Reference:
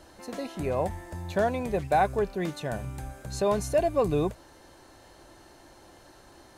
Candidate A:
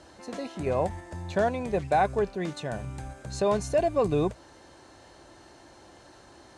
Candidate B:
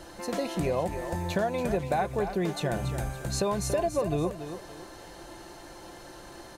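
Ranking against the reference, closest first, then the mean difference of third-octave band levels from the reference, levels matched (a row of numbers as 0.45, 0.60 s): A, B; 1.5, 6.5 dB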